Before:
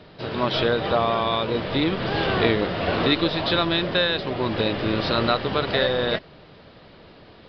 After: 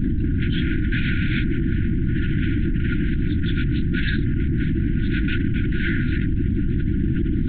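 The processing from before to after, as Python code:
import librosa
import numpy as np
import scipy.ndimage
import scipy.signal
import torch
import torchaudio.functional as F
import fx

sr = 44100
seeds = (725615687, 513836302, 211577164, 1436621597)

y = fx.spec_expand(x, sr, power=1.7)
y = scipy.signal.sosfilt(scipy.signal.butter(2, 2100.0, 'lowpass', fs=sr, output='sos'), y)
y = fx.peak_eq(y, sr, hz=210.0, db=11.0, octaves=3.0)
y = np.clip(y, -10.0 ** (-14.5 / 20.0), 10.0 ** (-14.5 / 20.0))
y = fx.tube_stage(y, sr, drive_db=18.0, bias=0.7)
y = fx.notch_comb(y, sr, f0_hz=260.0)
y = y + 10.0 ** (-24.0 / 20.0) * np.pad(y, (int(82 * sr / 1000.0), 0))[:len(y)]
y = fx.lpc_vocoder(y, sr, seeds[0], excitation='whisper', order=8)
y = fx.brickwall_bandstop(y, sr, low_hz=350.0, high_hz=1400.0)
y = fx.env_flatten(y, sr, amount_pct=100)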